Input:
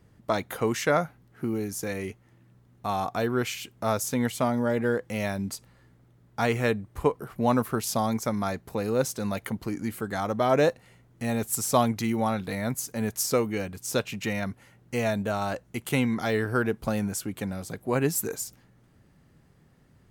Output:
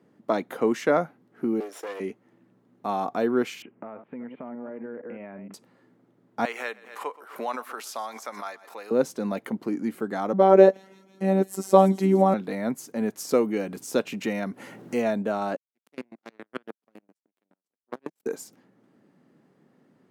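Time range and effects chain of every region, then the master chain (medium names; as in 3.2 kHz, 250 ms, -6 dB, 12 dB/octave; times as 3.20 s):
1.60–2.00 s: comb filter that takes the minimum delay 0.55 ms + high-pass 410 Hz 24 dB/octave + loudspeaker Doppler distortion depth 0.13 ms
3.62–5.54 s: chunks repeated in reverse 155 ms, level -11 dB + compression 12:1, threshold -36 dBFS + steep low-pass 2.7 kHz 48 dB/octave
6.45–8.91 s: high-pass 1.1 kHz + feedback delay 125 ms, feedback 42%, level -22 dB + swell ahead of each attack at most 85 dB/s
10.33–12.34 s: peaking EQ 400 Hz +9 dB 3 oct + robot voice 192 Hz + feedback echo behind a high-pass 166 ms, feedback 72%, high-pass 4.5 kHz, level -12 dB
13.29–15.02 s: treble shelf 6 kHz +5.5 dB + upward compressor, threshold -26 dBFS
15.56–18.26 s: square tremolo 7.2 Hz, depth 65%, duty 25% + power-law waveshaper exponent 3
whole clip: high-pass 230 Hz 24 dB/octave; tilt EQ -3 dB/octave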